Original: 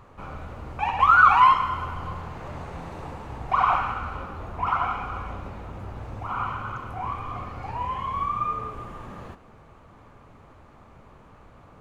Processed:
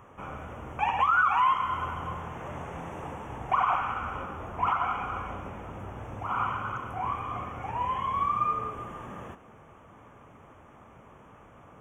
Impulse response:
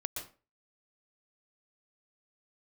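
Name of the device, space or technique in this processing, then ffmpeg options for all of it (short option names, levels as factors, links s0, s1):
PA system with an anti-feedback notch: -af "highpass=f=120:p=1,asuperstop=centerf=4400:order=12:qfactor=2.1,alimiter=limit=0.178:level=0:latency=1:release=347"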